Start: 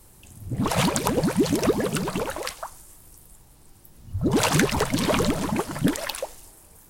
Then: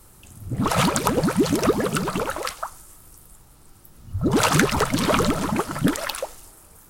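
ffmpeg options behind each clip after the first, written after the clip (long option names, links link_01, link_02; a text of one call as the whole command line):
ffmpeg -i in.wav -af "equalizer=frequency=1300:width_type=o:width=0.32:gain=8,volume=1.5dB" out.wav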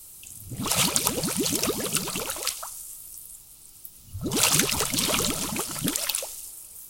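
ffmpeg -i in.wav -af "aexciter=amount=3:drive=8.6:freq=2400,volume=-9dB" out.wav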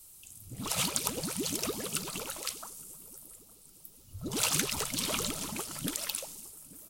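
ffmpeg -i in.wav -filter_complex "[0:a]asplit=2[link_01][link_02];[link_02]adelay=862,lowpass=frequency=840:poles=1,volume=-19.5dB,asplit=2[link_03][link_04];[link_04]adelay=862,lowpass=frequency=840:poles=1,volume=0.49,asplit=2[link_05][link_06];[link_06]adelay=862,lowpass=frequency=840:poles=1,volume=0.49,asplit=2[link_07][link_08];[link_08]adelay=862,lowpass=frequency=840:poles=1,volume=0.49[link_09];[link_01][link_03][link_05][link_07][link_09]amix=inputs=5:normalize=0,volume=-8dB" out.wav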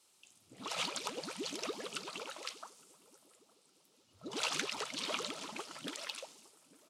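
ffmpeg -i in.wav -af "highpass=350,lowpass=4600,volume=-2.5dB" out.wav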